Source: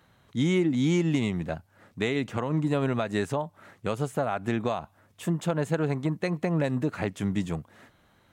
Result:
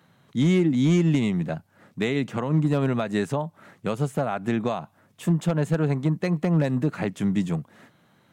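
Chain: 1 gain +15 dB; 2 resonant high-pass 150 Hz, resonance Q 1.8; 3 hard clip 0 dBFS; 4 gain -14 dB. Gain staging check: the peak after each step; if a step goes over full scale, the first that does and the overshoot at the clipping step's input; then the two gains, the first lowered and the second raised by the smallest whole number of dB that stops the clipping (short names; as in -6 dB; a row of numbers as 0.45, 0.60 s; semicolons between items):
+0.5, +5.0, 0.0, -14.0 dBFS; step 1, 5.0 dB; step 1 +10 dB, step 4 -9 dB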